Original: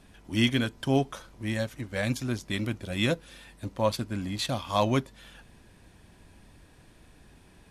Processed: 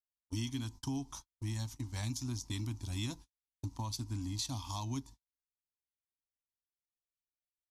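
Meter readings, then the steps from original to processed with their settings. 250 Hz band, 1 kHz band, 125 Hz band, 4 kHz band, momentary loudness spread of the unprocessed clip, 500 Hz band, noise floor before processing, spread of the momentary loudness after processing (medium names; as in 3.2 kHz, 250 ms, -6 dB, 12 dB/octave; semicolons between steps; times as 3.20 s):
-11.5 dB, -14.5 dB, -6.5 dB, -10.5 dB, 11 LU, -24.0 dB, -57 dBFS, 6 LU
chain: FFT filter 110 Hz 0 dB, 190 Hz -15 dB, 280 Hz -2 dB, 520 Hz -28 dB, 920 Hz 0 dB, 1.5 kHz -18 dB, 2.9 kHz -11 dB, 5.9 kHz +6 dB, 8.8 kHz -2 dB; gate -44 dBFS, range -58 dB; compression, threshold -36 dBFS, peak gain reduction 11 dB; dynamic bell 1.1 kHz, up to -6 dB, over -49 dBFS, Q 1.2; trim +1.5 dB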